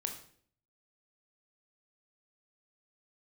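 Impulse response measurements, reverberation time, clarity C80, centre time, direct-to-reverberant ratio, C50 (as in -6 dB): 0.55 s, 12.0 dB, 18 ms, 3.5 dB, 8.5 dB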